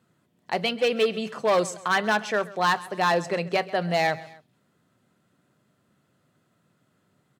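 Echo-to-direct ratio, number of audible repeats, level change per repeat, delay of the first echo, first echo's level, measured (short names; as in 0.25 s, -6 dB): -18.0 dB, 2, -6.5 dB, 0.132 s, -19.0 dB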